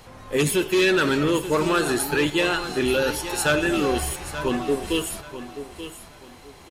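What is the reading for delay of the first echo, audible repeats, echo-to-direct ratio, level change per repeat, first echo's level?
0.882 s, 3, -11.5 dB, -11.5 dB, -12.0 dB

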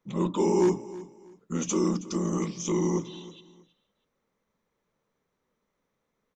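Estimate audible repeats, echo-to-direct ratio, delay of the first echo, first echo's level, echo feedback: 2, -17.0 dB, 0.32 s, -17.5 dB, 26%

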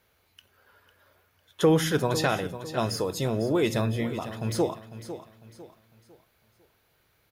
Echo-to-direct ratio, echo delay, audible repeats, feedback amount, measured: -12.0 dB, 0.501 s, 3, 36%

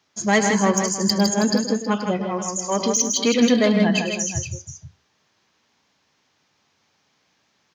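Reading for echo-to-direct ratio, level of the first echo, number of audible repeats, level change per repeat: -3.0 dB, -11.0 dB, 4, no steady repeat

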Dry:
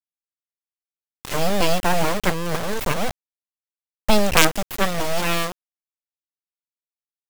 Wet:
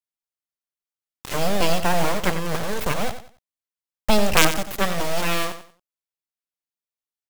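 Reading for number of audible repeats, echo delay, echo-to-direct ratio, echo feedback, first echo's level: 3, 92 ms, -10.5 dB, 27%, -11.0 dB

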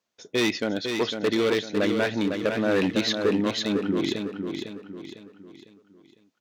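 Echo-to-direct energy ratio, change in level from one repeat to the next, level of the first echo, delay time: -5.0 dB, -7.5 dB, -6.0 dB, 0.503 s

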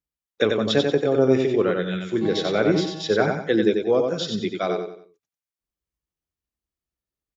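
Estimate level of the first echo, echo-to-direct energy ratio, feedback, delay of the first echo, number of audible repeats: -4.5 dB, -4.0 dB, 35%, 92 ms, 4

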